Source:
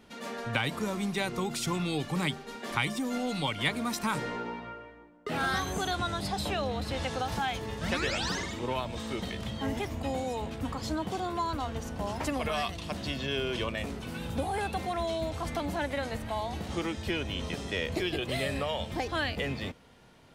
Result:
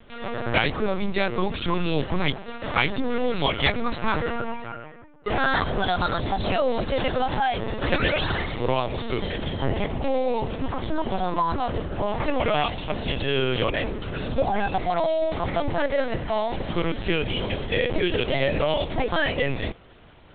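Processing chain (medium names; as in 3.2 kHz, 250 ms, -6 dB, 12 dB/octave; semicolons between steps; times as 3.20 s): dynamic bell 520 Hz, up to +4 dB, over -46 dBFS, Q 2.2; LPC vocoder at 8 kHz pitch kept; trim +7.5 dB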